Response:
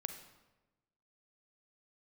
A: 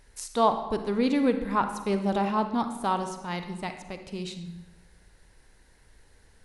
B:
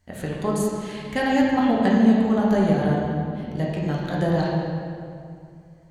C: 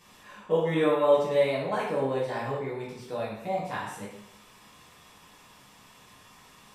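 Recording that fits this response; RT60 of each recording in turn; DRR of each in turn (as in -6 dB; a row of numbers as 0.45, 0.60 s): A; 1.1, 2.4, 0.80 s; 7.5, -5.0, -7.5 dB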